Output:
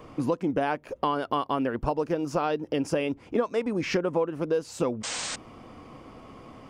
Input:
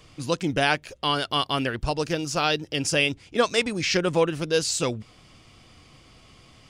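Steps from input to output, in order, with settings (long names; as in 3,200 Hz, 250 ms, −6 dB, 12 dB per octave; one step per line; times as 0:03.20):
octave-band graphic EQ 250/500/1,000/4,000/8,000 Hz +10/+8/+10/−8/−8 dB
downward compressor 6 to 1, threshold −24 dBFS, peak gain reduction 18.5 dB
sound drawn into the spectrogram noise, 0:05.03–0:05.36, 440–8,800 Hz −33 dBFS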